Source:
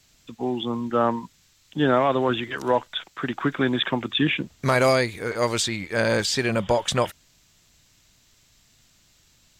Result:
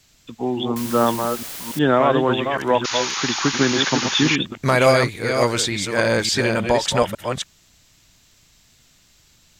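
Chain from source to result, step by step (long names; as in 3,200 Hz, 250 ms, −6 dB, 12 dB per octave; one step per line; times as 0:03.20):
delay that plays each chunk backwards 286 ms, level −5.5 dB
0:00.76–0:01.79: bit-depth reduction 6 bits, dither triangular
0:02.84–0:04.36: sound drawn into the spectrogram noise 770–7,000 Hz −29 dBFS
level +3 dB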